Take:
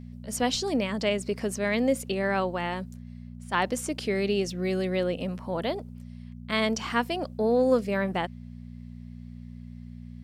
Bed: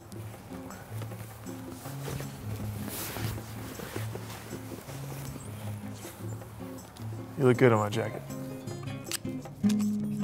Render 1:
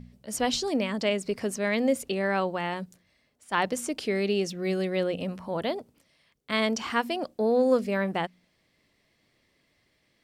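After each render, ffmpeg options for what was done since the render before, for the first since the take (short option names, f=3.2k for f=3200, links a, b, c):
-af "bandreject=f=60:t=h:w=4,bandreject=f=120:t=h:w=4,bandreject=f=180:t=h:w=4,bandreject=f=240:t=h:w=4"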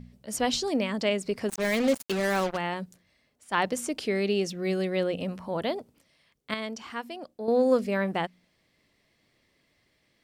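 -filter_complex "[0:a]asplit=3[a][b][c];[a]afade=t=out:st=1.48:d=0.02[d];[b]acrusher=bits=4:mix=0:aa=0.5,afade=t=in:st=1.48:d=0.02,afade=t=out:st=2.56:d=0.02[e];[c]afade=t=in:st=2.56:d=0.02[f];[d][e][f]amix=inputs=3:normalize=0,asplit=3[g][h][i];[g]atrim=end=6.542[j];[h]atrim=start=6.538:end=7.482,asetpts=PTS-STARTPTS,volume=-9dB[k];[i]atrim=start=7.478[l];[j][k]acrossfade=d=0.004:c1=hsin:c2=hsin[m];[m][l]acrossfade=d=0.004:c1=hsin:c2=hsin"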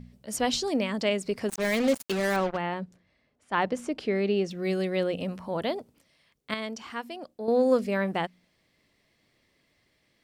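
-filter_complex "[0:a]asettb=1/sr,asplit=3[a][b][c];[a]atrim=end=2.364[d];[b]atrim=start=2.36:end=4.51,asetpts=PTS-STARTPTS,afade=t=in:d=0.004:c=qsin,afade=t=out:st=2.146:d=0.004:c=qsin,aemphasis=mode=reproduction:type=75fm[e];[c]atrim=start=4.506[f];[d][e]acrossfade=d=0.004:c1=hsin:c2=qsin[g];[g][f]acrossfade=d=0.004:c1=qsin:c2=hsin"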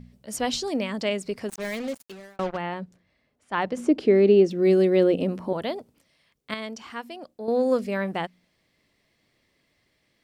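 -filter_complex "[0:a]asettb=1/sr,asplit=3[a][b][c];[a]atrim=end=3.774[d];[b]atrim=start=3.77:end=5.53,asetpts=PTS-STARTPTS,afade=t=in:d=0.004:c=qsin,afade=t=out:st=1.756:d=0.004:c=qsin,equalizer=f=330:w=0.99:g=12.5[e];[c]atrim=start=5.526[f];[d][e]acrossfade=d=0.004:c1=hsin:c2=qsin[g];[g][f]acrossfade=d=0.004:c1=qsin:c2=hsin,asplit=2[h][i];[h]atrim=end=2.39,asetpts=PTS-STARTPTS,afade=t=out:st=1.21:d=1.18[j];[i]atrim=start=2.39,asetpts=PTS-STARTPTS,afade=t=in:d=0.004:c=hsin[k];[j][k]concat=n=2:v=0:a=1"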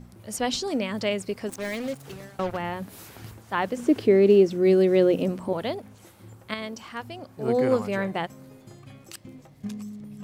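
-filter_complex "[1:a]volume=-8.5dB[a];[0:a][a]amix=inputs=2:normalize=0"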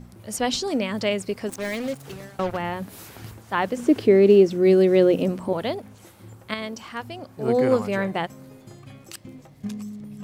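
-af "volume=2.5dB"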